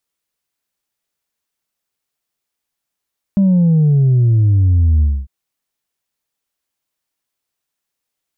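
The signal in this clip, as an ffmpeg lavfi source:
ffmpeg -f lavfi -i "aevalsrc='0.355*clip((1.9-t)/0.25,0,1)*tanh(1.19*sin(2*PI*200*1.9/log(65/200)*(exp(log(65/200)*t/1.9)-1)))/tanh(1.19)':duration=1.9:sample_rate=44100" out.wav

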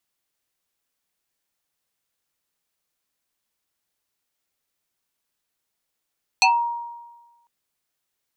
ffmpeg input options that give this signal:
ffmpeg -f lavfi -i "aevalsrc='0.282*pow(10,-3*t/1.25)*sin(2*PI*943*t+3.6*pow(10,-3*t/0.23)*sin(2*PI*1.81*943*t))':duration=1.05:sample_rate=44100" out.wav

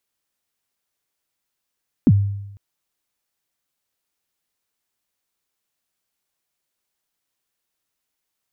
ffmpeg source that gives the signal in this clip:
ffmpeg -f lavfi -i "aevalsrc='0.447*pow(10,-3*t/0.91)*sin(2*PI*(310*0.046/log(100/310)*(exp(log(100/310)*min(t,0.046)/0.046)-1)+100*max(t-0.046,0)))':duration=0.5:sample_rate=44100" out.wav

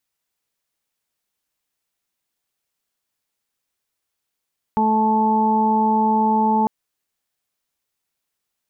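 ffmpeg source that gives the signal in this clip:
ffmpeg -f lavfi -i "aevalsrc='0.112*sin(2*PI*218*t)+0.0501*sin(2*PI*436*t)+0.015*sin(2*PI*654*t)+0.15*sin(2*PI*872*t)+0.015*sin(2*PI*1090*t)':duration=1.9:sample_rate=44100" out.wav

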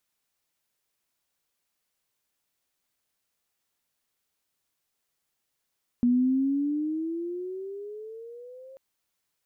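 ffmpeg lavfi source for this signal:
ffmpeg -f lavfi -i "aevalsrc='pow(10,(-18-26*t/2.74)/20)*sin(2*PI*240*2.74/(14*log(2)/12)*(exp(14*log(2)/12*t/2.74)-1))':duration=2.74:sample_rate=44100" out.wav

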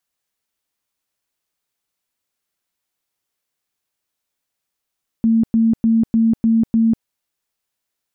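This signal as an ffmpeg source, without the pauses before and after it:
ffmpeg -f lavfi -i "aevalsrc='0.282*sin(2*PI*226*mod(t,0.3))*lt(mod(t,0.3),44/226)':duration=1.8:sample_rate=44100" out.wav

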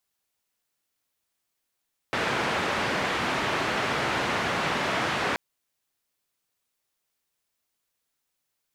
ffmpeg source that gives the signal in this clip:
ffmpeg -f lavfi -i "anoisesrc=color=white:duration=3.23:sample_rate=44100:seed=1,highpass=frequency=98,lowpass=frequency=1900,volume=-11.8dB" out.wav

